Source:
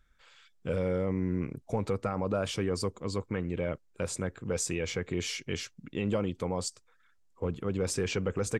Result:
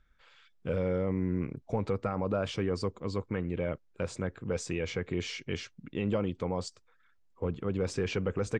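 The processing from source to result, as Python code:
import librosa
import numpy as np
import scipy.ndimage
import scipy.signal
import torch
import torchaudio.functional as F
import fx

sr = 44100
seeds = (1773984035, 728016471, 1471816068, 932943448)

y = fx.air_absorb(x, sr, metres=110.0)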